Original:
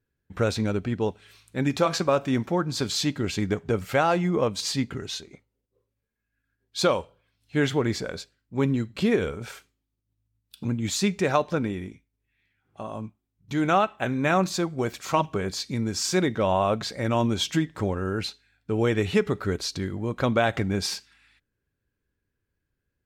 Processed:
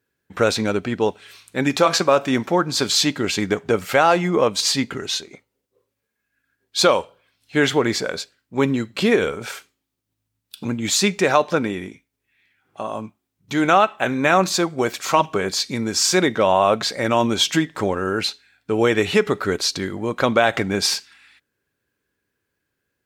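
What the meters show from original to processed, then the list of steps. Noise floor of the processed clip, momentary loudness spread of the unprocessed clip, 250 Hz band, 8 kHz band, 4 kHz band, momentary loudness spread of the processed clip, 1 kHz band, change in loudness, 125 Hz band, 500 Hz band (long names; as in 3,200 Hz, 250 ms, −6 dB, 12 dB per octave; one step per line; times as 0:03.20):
−78 dBFS, 12 LU, +4.0 dB, +9.5 dB, +9.5 dB, 11 LU, +7.5 dB, +6.5 dB, −0.5 dB, +6.5 dB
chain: high-pass filter 400 Hz 6 dB per octave
in parallel at 0 dB: brickwall limiter −16 dBFS, peak gain reduction 7.5 dB
on the sum: level +3.5 dB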